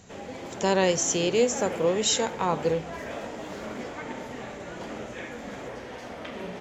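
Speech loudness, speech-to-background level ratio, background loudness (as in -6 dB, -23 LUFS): -25.0 LUFS, 12.0 dB, -37.0 LUFS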